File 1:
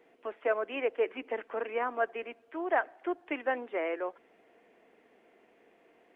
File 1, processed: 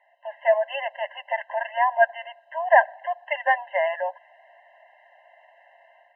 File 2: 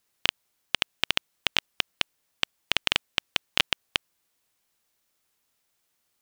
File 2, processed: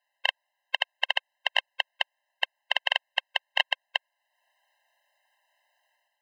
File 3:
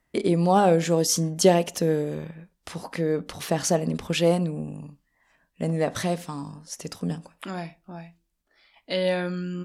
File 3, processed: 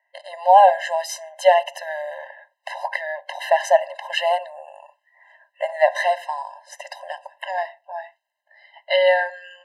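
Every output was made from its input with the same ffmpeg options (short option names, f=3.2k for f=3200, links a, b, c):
-filter_complex "[0:a]dynaudnorm=f=130:g=5:m=8dB,acrossover=split=540 2900:gain=0.2 1 0.1[a][b][c];[a][b][c]amix=inputs=3:normalize=0,afftfilt=real='re*eq(mod(floor(b*sr/1024/530),2),1)':imag='im*eq(mod(floor(b*sr/1024/530),2),1)':win_size=1024:overlap=0.75,volume=7dB"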